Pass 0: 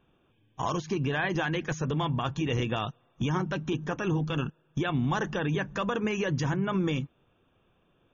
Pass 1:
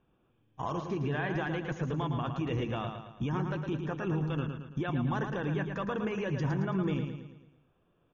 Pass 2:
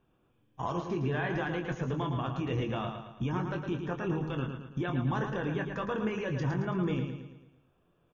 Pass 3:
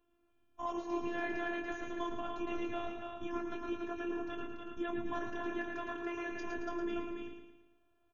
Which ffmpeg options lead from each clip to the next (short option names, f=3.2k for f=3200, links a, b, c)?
-filter_complex "[0:a]lowpass=f=1.8k:p=1,asplit=2[a][b];[b]aecho=0:1:111|222|333|444|555|666:0.473|0.227|0.109|0.0523|0.0251|0.0121[c];[a][c]amix=inputs=2:normalize=0,volume=-4dB"
-filter_complex "[0:a]asplit=2[a][b];[b]adelay=23,volume=-7.5dB[c];[a][c]amix=inputs=2:normalize=0"
-af "afftfilt=real='hypot(re,im)*cos(PI*b)':imag='0':win_size=512:overlap=0.75,aecho=1:1:119.5|285.7:0.282|0.562,volume=-1.5dB"